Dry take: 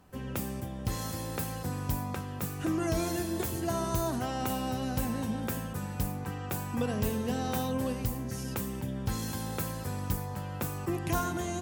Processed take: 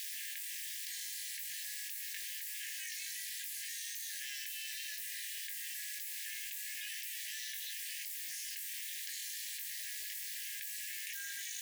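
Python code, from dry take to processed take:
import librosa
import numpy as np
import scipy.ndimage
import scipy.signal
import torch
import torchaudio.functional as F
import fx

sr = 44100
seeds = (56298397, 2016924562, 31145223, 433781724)

y = fx.lowpass(x, sr, hz=2100.0, slope=6, at=(9.7, 10.15))
y = fx.quant_dither(y, sr, seeds[0], bits=8, dither='triangular')
y = y * np.sin(2.0 * np.pi * 200.0 * np.arange(len(y)) / sr)
y = fx.brickwall_highpass(y, sr, low_hz=1600.0)
y = fx.doubler(y, sr, ms=20.0, db=-4.0)
y = fx.env_flatten(y, sr, amount_pct=100)
y = y * 10.0 ** (-6.0 / 20.0)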